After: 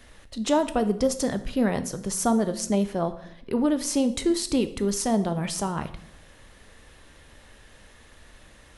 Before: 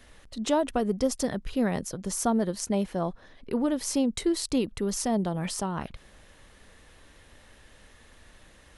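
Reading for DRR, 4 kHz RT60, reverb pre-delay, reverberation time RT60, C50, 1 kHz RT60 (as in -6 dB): 10.0 dB, 0.60 s, 11 ms, 0.70 s, 14.0 dB, 0.65 s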